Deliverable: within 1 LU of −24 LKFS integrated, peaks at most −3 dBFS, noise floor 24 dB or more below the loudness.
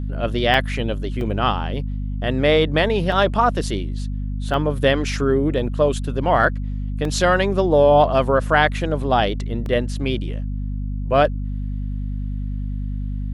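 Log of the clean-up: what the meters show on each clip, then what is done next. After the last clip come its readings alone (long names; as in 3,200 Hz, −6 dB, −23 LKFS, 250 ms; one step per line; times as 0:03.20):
number of dropouts 6; longest dropout 1.7 ms; mains hum 50 Hz; hum harmonics up to 250 Hz; level of the hum −23 dBFS; integrated loudness −20.5 LKFS; sample peak −1.5 dBFS; target loudness −24.0 LKFS
→ repair the gap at 0:00.54/0:01.21/0:03.12/0:04.54/0:07.05/0:09.66, 1.7 ms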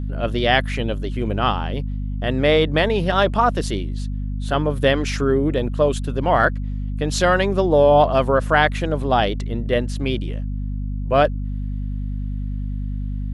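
number of dropouts 0; mains hum 50 Hz; hum harmonics up to 250 Hz; level of the hum −23 dBFS
→ mains-hum notches 50/100/150/200/250 Hz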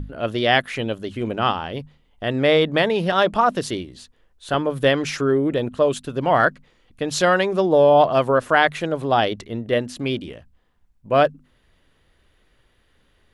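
mains hum none found; integrated loudness −20.0 LKFS; sample peak −2.0 dBFS; target loudness −24.0 LKFS
→ level −4 dB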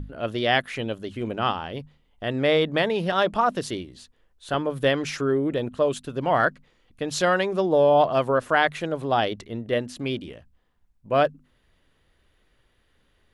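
integrated loudness −24.0 LKFS; sample peak −6.0 dBFS; background noise floor −66 dBFS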